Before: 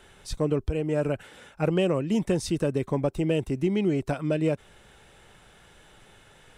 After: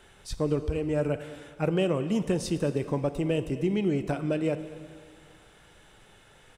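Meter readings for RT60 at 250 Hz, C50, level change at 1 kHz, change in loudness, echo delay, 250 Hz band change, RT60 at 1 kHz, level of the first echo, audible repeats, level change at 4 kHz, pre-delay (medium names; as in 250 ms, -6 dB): 2.1 s, 11.5 dB, -1.5 dB, -1.5 dB, 216 ms, -1.5 dB, 2.1 s, -21.0 dB, 1, -1.5 dB, 10 ms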